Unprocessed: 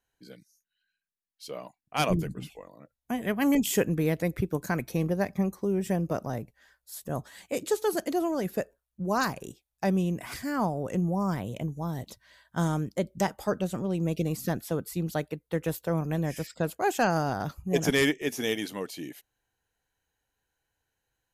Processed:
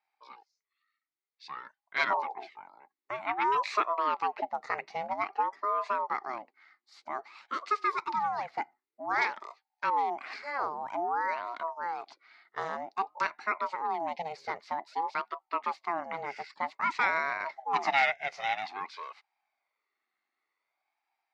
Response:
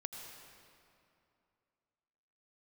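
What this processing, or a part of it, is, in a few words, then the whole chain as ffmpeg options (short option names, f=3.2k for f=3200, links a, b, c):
voice changer toy: -af "aeval=exprs='val(0)*sin(2*PI*560*n/s+560*0.5/0.52*sin(2*PI*0.52*n/s))':c=same,highpass=480,equalizer=f=510:t=q:w=4:g=-9,equalizer=f=810:t=q:w=4:g=7,equalizer=f=1.2k:t=q:w=4:g=4,equalizer=f=2.1k:t=q:w=4:g=10,equalizer=f=3.2k:t=q:w=4:g=-5,equalizer=f=4.5k:t=q:w=4:g=5,lowpass=f=4.6k:w=0.5412,lowpass=f=4.6k:w=1.3066,volume=-1.5dB"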